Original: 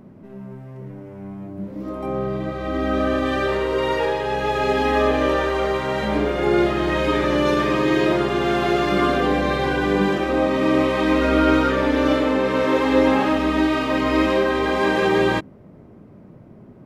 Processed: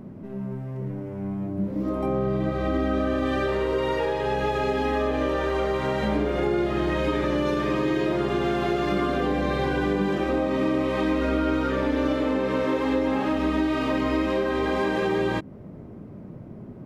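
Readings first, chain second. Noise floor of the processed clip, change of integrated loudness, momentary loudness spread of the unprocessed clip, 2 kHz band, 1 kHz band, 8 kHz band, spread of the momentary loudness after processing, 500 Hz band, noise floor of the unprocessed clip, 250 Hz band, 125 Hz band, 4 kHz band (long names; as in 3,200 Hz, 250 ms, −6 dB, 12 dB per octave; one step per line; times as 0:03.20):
−41 dBFS, −5.5 dB, 13 LU, −7.0 dB, −6.0 dB, can't be measured, 9 LU, −5.0 dB, −45 dBFS, −4.0 dB, −1.5 dB, −7.5 dB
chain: downward compressor, threshold −24 dBFS, peak gain reduction 12 dB
low-shelf EQ 500 Hz +5 dB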